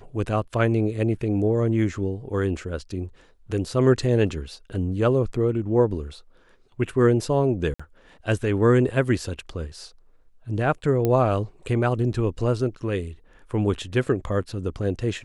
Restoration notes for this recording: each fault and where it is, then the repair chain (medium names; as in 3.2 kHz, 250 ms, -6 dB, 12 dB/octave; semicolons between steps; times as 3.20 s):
7.74–7.79 s: dropout 55 ms
11.05 s: pop -11 dBFS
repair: de-click; interpolate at 7.74 s, 55 ms